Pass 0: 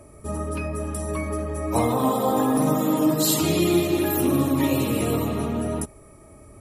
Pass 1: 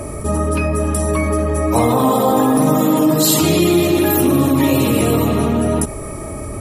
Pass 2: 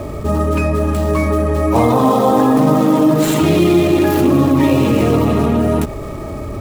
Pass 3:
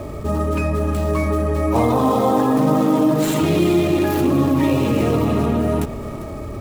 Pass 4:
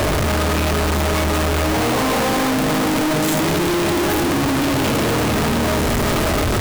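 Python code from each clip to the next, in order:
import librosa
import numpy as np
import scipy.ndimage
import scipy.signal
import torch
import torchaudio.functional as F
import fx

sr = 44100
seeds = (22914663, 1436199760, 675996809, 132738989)

y1 = fx.env_flatten(x, sr, amount_pct=50)
y1 = F.gain(torch.from_numpy(y1), 5.0).numpy()
y2 = scipy.ndimage.median_filter(y1, 9, mode='constant')
y2 = F.gain(torch.from_numpy(y2), 2.0).numpy()
y3 = y2 + 10.0 ** (-14.5 / 20.0) * np.pad(y2, (int(398 * sr / 1000.0), 0))[:len(y2)]
y3 = F.gain(torch.from_numpy(y3), -4.5).numpy()
y4 = np.sign(y3) * np.sqrt(np.mean(np.square(y3)))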